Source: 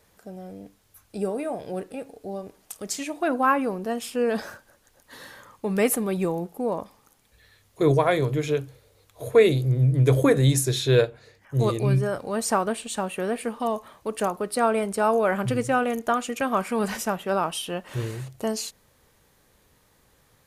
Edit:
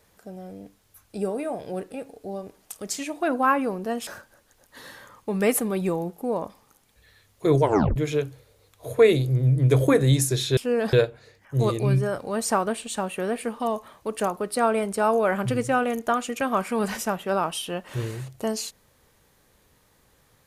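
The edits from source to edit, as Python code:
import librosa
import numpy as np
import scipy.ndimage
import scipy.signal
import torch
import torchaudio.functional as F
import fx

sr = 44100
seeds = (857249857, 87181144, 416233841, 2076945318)

y = fx.edit(x, sr, fx.move(start_s=4.07, length_s=0.36, to_s=10.93),
    fx.tape_stop(start_s=7.98, length_s=0.34), tone=tone)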